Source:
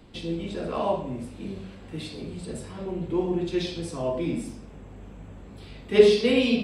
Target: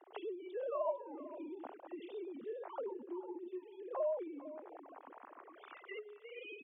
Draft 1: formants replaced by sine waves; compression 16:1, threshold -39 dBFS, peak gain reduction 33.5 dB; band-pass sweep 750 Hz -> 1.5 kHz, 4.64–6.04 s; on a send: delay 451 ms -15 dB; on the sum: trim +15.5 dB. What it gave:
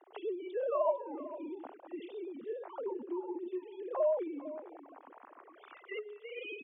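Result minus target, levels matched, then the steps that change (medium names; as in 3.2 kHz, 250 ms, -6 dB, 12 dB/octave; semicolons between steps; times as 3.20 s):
compression: peak gain reduction -6 dB
change: compression 16:1, threshold -45.5 dBFS, peak gain reduction 39.5 dB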